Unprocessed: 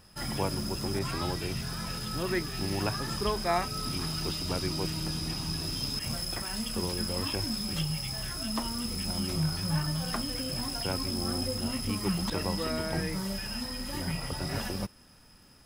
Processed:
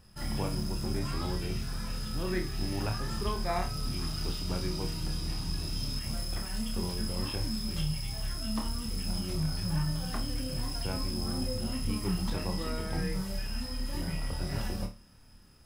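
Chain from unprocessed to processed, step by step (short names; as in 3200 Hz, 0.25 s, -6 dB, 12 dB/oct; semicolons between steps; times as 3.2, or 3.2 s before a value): low shelf 140 Hz +10 dB; flutter echo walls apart 4.7 m, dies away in 0.29 s; gain -6 dB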